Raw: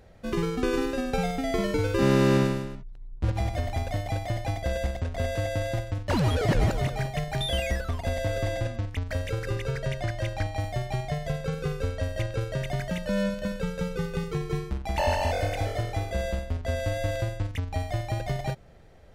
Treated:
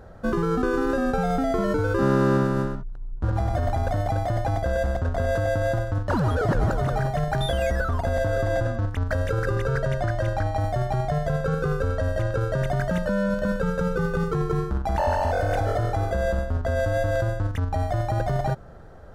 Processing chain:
high shelf with overshoot 1,800 Hz −7 dB, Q 3
in parallel at 0 dB: compressor whose output falls as the input rises −30 dBFS, ratio −0.5

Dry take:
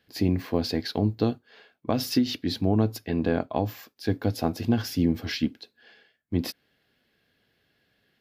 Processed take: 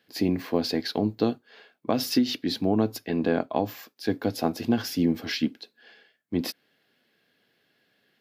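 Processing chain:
high-pass filter 180 Hz 12 dB per octave
level +1.5 dB

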